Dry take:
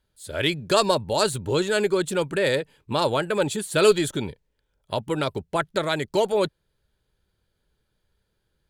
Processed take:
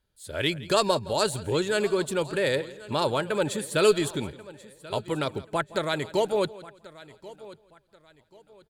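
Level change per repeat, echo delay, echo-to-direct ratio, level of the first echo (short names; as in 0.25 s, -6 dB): no steady repeat, 0.167 s, -15.5 dB, -19.0 dB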